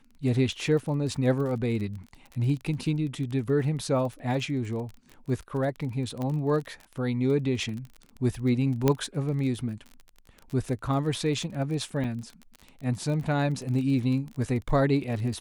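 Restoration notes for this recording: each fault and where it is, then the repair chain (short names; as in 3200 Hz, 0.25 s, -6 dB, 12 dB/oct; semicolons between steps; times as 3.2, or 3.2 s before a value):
crackle 31/s -34 dBFS
6.22 pop -21 dBFS
8.88 pop -9 dBFS
12.04 gap 3.7 ms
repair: de-click; interpolate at 12.04, 3.7 ms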